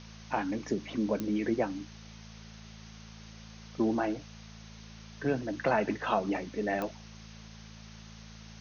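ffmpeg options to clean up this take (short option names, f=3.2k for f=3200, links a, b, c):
-af "adeclick=t=4,bandreject=f=54.7:t=h:w=4,bandreject=f=109.4:t=h:w=4,bandreject=f=164.1:t=h:w=4,bandreject=f=218.8:t=h:w=4,afwtdn=0.0032"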